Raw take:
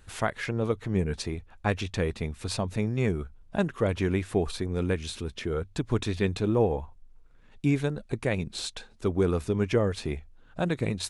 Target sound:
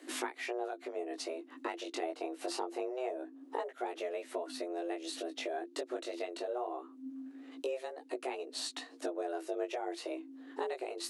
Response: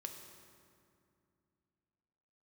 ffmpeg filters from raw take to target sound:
-filter_complex "[0:a]asettb=1/sr,asplit=3[s0][s1][s2];[s0]atrim=end=2.034[s3];[s1]atrim=start=2.03:end=3.71,asetpts=PTS-STARTPTS,afade=t=in:d=0.004:c=qsin,afade=t=out:st=1.676:d=0.004:c=qsin,equalizer=f=500:t=o:w=1.9:g=7.5[s4];[s2]atrim=start=3.706[s5];[s3][s4]acrossfade=d=0.004:c1=hsin:c2=qsin[s6];[s6][s5]acrossfade=d=0.004:c1=qsin:c2=hsin,asettb=1/sr,asplit=3[s7][s8][s9];[s7]atrim=end=9.184[s10];[s8]atrim=start=9.18:end=10.08,asetpts=PTS-STARTPTS,afade=t=in:d=0.004:c=qsin,afade=t=out:st=0.896:d=0.004:c=qsin,highpass=51[s11];[s9]atrim=start=10.076[s12];[s10][s11]acrossfade=d=0.004:c1=hsin:c2=qsin[s13];[s13][s12]acrossfade=d=0.004:c1=qsin:c2=hsin,acompressor=threshold=0.0112:ratio=6,afreqshift=250,flanger=delay=16:depth=5.4:speed=0.24,volume=2"

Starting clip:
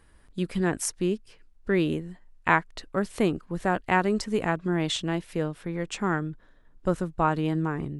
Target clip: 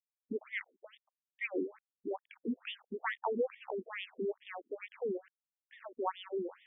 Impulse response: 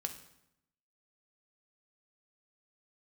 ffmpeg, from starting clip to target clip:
-af "asetrate=52920,aresample=44100,aeval=exprs='val(0)*gte(abs(val(0)),0.0075)':c=same,afftfilt=real='re*between(b*sr/1024,300*pow(2600/300,0.5+0.5*sin(2*PI*2.3*pts/sr))/1.41,300*pow(2600/300,0.5+0.5*sin(2*PI*2.3*pts/sr))*1.41)':imag='im*between(b*sr/1024,300*pow(2600/300,0.5+0.5*sin(2*PI*2.3*pts/sr))/1.41,300*pow(2600/300,0.5+0.5*sin(2*PI*2.3*pts/sr))*1.41)':win_size=1024:overlap=0.75,volume=0.708"

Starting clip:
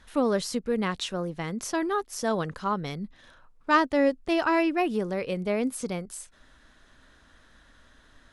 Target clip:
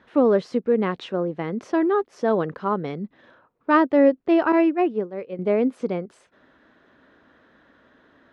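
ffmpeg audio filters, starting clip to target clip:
-filter_complex "[0:a]asettb=1/sr,asplit=3[s0][s1][s2];[s0]atrim=end=4.524[s3];[s1]atrim=start=4.52:end=5.39,asetpts=PTS-STARTPTS,afade=t=in:d=0.004:c=qsin,afade=t=out:st=0.866:d=0.004:c=qsin,agate=range=0.0224:threshold=0.0891:ratio=3:detection=peak[s4];[s2]atrim=start=5.386[s5];[s3][s4]acrossfade=d=0.004:c1=hsin:c2=qsin[s6];[s6][s5]acrossfade=d=0.004:c1=qsin:c2=hsin,highpass=130,lowpass=2500,equalizer=f=390:w=0.82:g=8,volume=1.12"

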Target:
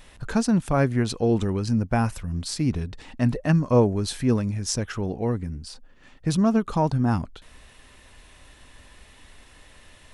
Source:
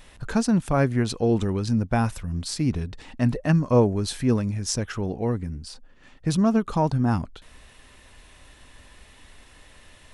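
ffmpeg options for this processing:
-filter_complex "[0:a]asettb=1/sr,asplit=3[s0][s1][s2];[s0]atrim=end=1.504[s3];[s1]atrim=start=1.5:end=2.14,asetpts=PTS-STARTPTS,afade=t=in:d=0.004:c=qsin,afade=t=out:st=0.636:d=0.004:c=qsin,bandreject=f=3600:w=6.8[s4];[s2]atrim=start=2.136[s5];[s3][s4]acrossfade=d=0.004:c1=hsin:c2=qsin[s6];[s6][s5]acrossfade=d=0.004:c1=qsin:c2=hsin"

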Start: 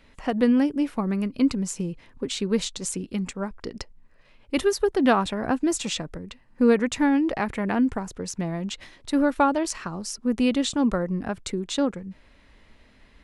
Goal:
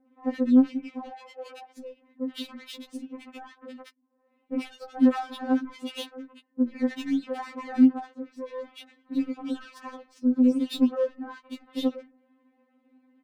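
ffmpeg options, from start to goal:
-filter_complex "[0:a]highpass=f=140:w=0.5412,highpass=f=140:w=1.3066,equalizer=f=6600:t=o:w=0.61:g=-7.5,alimiter=limit=0.141:level=0:latency=1:release=84,adynamicsmooth=sensitivity=4.5:basefreq=1000,asettb=1/sr,asplit=3[s0][s1][s2];[s0]atrim=end=1.084[s3];[s1]atrim=start=1.08:end=1.74,asetpts=PTS-STARTPTS,afade=t=in:d=0.004:c=qsin,afade=t=out:st=0.656:d=0.004:c=qsin,afreqshift=200[s4];[s2]atrim=start=1.736[s5];[s3][s4]acrossfade=d=0.004:c1=hsin:c2=qsin[s6];[s6][s5]acrossfade=d=0.004:c1=qsin:c2=hsin,acrossover=split=1500[s7][s8];[s8]adelay=70[s9];[s7][s9]amix=inputs=2:normalize=0,afftfilt=real='re*3.46*eq(mod(b,12),0)':imag='im*3.46*eq(mod(b,12),0)':win_size=2048:overlap=0.75"

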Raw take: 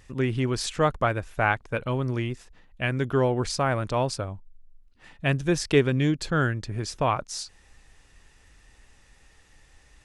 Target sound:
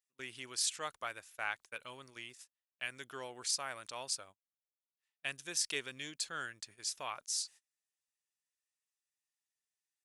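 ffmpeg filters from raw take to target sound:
-af "aderivative,atempo=1,agate=range=0.0398:threshold=0.002:ratio=16:detection=peak"

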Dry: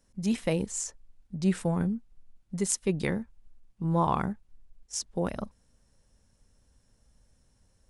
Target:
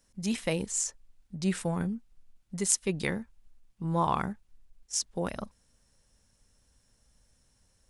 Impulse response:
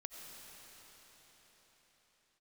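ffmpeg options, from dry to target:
-af "tiltshelf=f=1100:g=-3.5"

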